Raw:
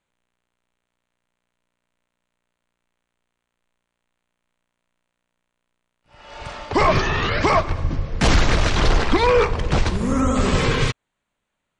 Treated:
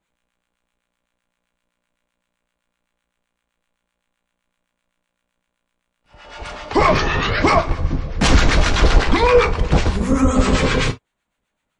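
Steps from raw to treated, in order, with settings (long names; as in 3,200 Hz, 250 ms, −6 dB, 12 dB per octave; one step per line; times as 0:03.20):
two-band tremolo in antiphase 7.8 Hz, depth 70%, crossover 920 Hz
reverb whose tail is shaped and stops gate 80 ms falling, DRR 7 dB
level +5 dB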